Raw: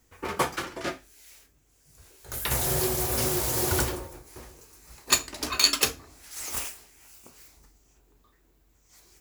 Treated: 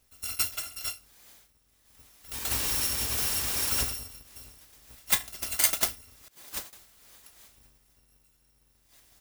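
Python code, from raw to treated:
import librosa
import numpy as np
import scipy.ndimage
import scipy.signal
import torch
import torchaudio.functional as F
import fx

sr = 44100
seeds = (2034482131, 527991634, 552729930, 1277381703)

y = fx.bit_reversed(x, sr, seeds[0], block=256)
y = fx.upward_expand(y, sr, threshold_db=-42.0, expansion=2.5, at=(6.28, 6.73))
y = y * 10.0 ** (-2.5 / 20.0)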